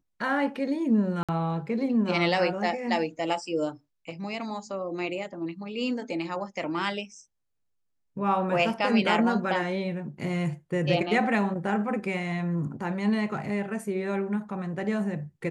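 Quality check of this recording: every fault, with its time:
1.23–1.29 gap 56 ms

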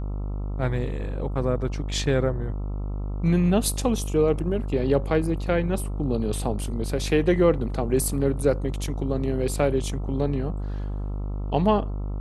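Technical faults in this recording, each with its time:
buzz 50 Hz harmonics 27 -29 dBFS

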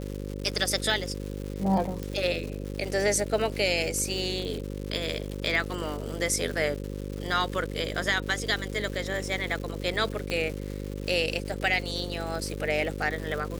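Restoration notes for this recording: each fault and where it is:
buzz 50 Hz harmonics 11 -35 dBFS
crackle 300/s -34 dBFS
2.03 pop
10.3 pop -17 dBFS

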